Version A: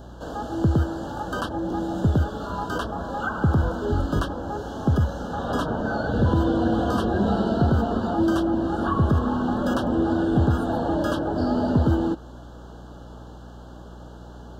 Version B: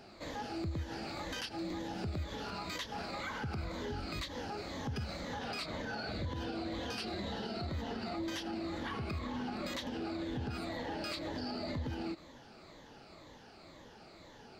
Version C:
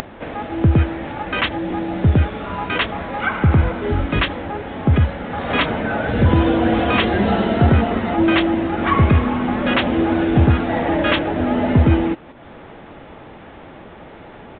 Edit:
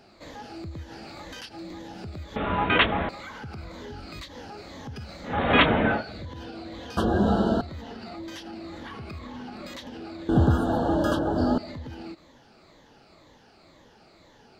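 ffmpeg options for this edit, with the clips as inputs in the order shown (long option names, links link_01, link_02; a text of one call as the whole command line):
ffmpeg -i take0.wav -i take1.wav -i take2.wav -filter_complex "[2:a]asplit=2[link_01][link_02];[0:a]asplit=2[link_03][link_04];[1:a]asplit=5[link_05][link_06][link_07][link_08][link_09];[link_05]atrim=end=2.362[link_10];[link_01]atrim=start=2.358:end=3.092[link_11];[link_06]atrim=start=3.088:end=5.39[link_12];[link_02]atrim=start=5.23:end=6.04[link_13];[link_07]atrim=start=5.88:end=6.972[link_14];[link_03]atrim=start=6.968:end=7.612[link_15];[link_08]atrim=start=7.608:end=10.292[link_16];[link_04]atrim=start=10.288:end=11.582[link_17];[link_09]atrim=start=11.578[link_18];[link_10][link_11]acrossfade=duration=0.004:curve1=hsin:curve2=hsin[link_19];[link_19][link_12]acrossfade=duration=0.004:curve1=hsin:curve2=hsin[link_20];[link_20][link_13]acrossfade=duration=0.16:curve1=tri:curve2=tri[link_21];[link_21][link_14]acrossfade=duration=0.16:curve1=tri:curve2=tri[link_22];[link_22][link_15]acrossfade=duration=0.004:curve1=hsin:curve2=hsin[link_23];[link_23][link_16]acrossfade=duration=0.004:curve1=hsin:curve2=hsin[link_24];[link_24][link_17]acrossfade=duration=0.004:curve1=hsin:curve2=hsin[link_25];[link_25][link_18]acrossfade=duration=0.004:curve1=hsin:curve2=hsin" out.wav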